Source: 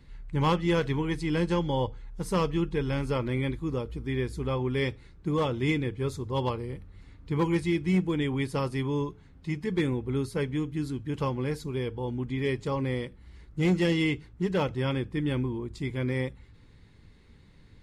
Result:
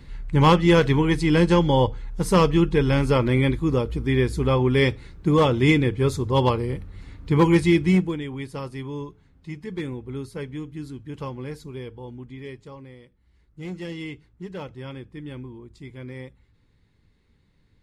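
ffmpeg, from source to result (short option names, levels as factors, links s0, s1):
-af "volume=7.08,afade=t=out:st=7.8:d=0.4:silence=0.237137,afade=t=out:st=11.67:d=1.3:silence=0.237137,afade=t=in:st=12.97:d=1.06:silence=0.398107"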